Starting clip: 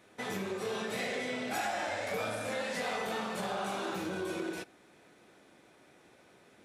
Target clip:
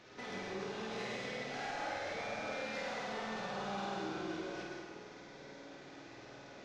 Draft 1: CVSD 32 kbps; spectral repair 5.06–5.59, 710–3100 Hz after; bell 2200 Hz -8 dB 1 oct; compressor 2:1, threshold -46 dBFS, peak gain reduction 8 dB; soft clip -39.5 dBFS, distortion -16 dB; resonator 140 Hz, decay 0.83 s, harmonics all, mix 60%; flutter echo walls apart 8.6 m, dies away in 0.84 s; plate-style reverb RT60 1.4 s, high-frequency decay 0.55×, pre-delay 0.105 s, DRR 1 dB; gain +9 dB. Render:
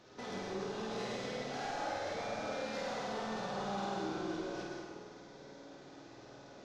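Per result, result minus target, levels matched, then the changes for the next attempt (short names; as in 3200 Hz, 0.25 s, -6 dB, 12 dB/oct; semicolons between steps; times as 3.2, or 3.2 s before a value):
2000 Hz band -4.0 dB; compressor: peak gain reduction -3.5 dB
remove: bell 2200 Hz -8 dB 1 oct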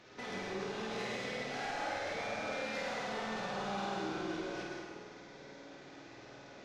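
compressor: peak gain reduction -3 dB
change: compressor 2:1, threshold -52 dBFS, peak gain reduction 11.5 dB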